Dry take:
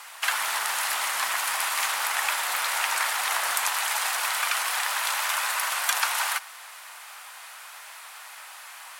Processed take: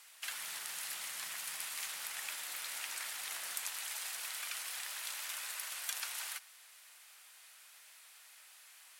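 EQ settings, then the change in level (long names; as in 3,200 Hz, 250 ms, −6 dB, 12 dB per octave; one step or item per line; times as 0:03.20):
guitar amp tone stack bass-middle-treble 10-0-1
+8.5 dB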